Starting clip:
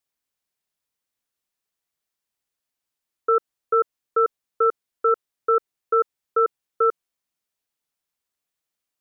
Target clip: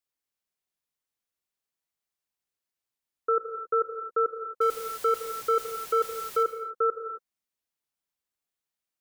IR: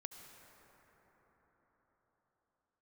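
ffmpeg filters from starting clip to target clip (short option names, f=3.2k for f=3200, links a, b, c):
-filter_complex "[0:a]asettb=1/sr,asplit=3[a][b][c];[a]atrim=end=4.614[d];[b]atrim=start=4.61:end=6.43,asetpts=PTS-STARTPTS,afade=t=in:d=0.004:c=qsin,afade=t=out:st=1.816:d=0.004:c=qsin,aeval=exprs='val(0)+0.5*0.0282*sgn(val(0))':c=same[e];[c]atrim=start=6.426[f];[d][e]acrossfade=d=0.004:c1=hsin:c2=qsin[g];[g][f]acrossfade=d=0.004:c1=qsin:c2=hsin[h];[1:a]atrim=start_sample=2205,afade=t=out:st=0.33:d=0.01,atrim=end_sample=14994[i];[h][i]afir=irnorm=-1:irlink=0"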